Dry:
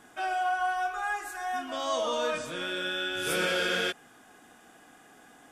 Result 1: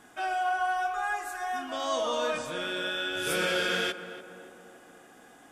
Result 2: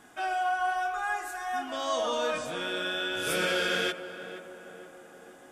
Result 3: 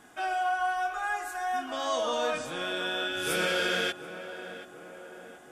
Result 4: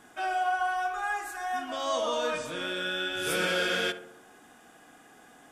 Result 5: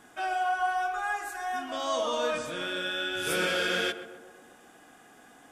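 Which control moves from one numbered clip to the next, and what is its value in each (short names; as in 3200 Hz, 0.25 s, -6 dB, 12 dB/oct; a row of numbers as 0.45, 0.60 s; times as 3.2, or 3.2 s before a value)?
tape echo, time: 287, 475, 732, 64, 128 ms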